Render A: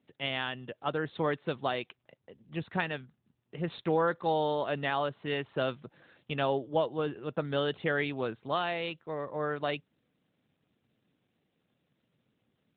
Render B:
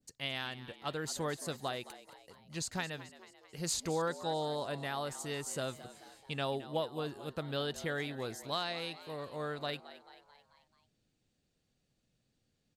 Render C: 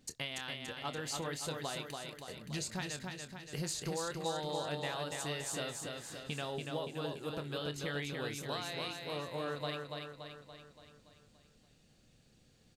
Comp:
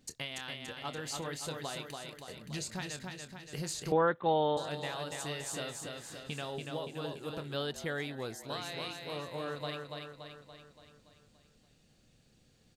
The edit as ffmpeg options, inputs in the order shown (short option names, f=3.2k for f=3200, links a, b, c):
-filter_complex "[2:a]asplit=3[a][b][c];[a]atrim=end=3.922[d];[0:a]atrim=start=3.918:end=4.572[e];[b]atrim=start=4.568:end=7.542[f];[1:a]atrim=start=7.538:end=8.502[g];[c]atrim=start=8.498[h];[d][e]acrossfade=d=0.004:c1=hsin:c2=hsin[i];[i][f]acrossfade=d=0.004:c1=hsin:c2=hsin[j];[j][g]acrossfade=d=0.004:c1=hsin:c2=hsin[k];[k][h]acrossfade=d=0.004:c1=hsin:c2=hsin"